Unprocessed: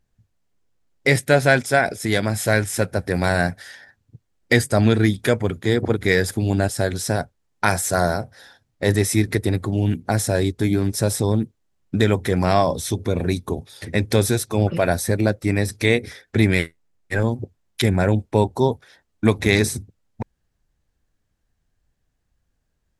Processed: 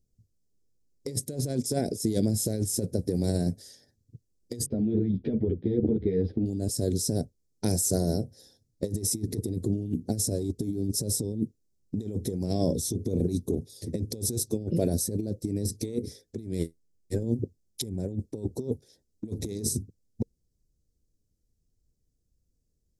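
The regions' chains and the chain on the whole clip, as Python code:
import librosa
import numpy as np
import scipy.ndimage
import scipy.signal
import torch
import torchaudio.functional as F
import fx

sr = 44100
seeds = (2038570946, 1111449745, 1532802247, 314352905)

y = fx.chain(x, sr, fx.cheby2_lowpass(hz=6900.0, order=4, stop_db=50),
    fx.over_compress(threshold_db=-21.0, ratio=-1.0),
    fx.ensemble(), at=(4.66, 6.46))
y = fx.curve_eq(y, sr, hz=(460.0, 1200.0, 2600.0, 5200.0), db=(0, -30, -20, 1))
y = fx.over_compress(y, sr, threshold_db=-23.0, ratio=-0.5)
y = fx.dynamic_eq(y, sr, hz=260.0, q=0.8, threshold_db=-35.0, ratio=4.0, max_db=5)
y = y * 10.0 ** (-6.5 / 20.0)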